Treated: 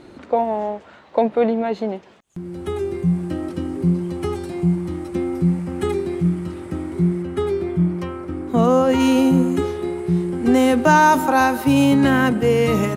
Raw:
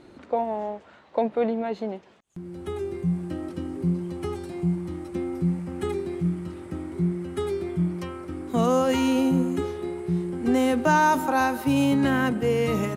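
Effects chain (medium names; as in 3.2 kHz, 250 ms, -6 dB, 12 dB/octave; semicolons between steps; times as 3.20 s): 7.21–8.99 s: treble shelf 4.4 kHz -> 2.2 kHz -9 dB; trim +6.5 dB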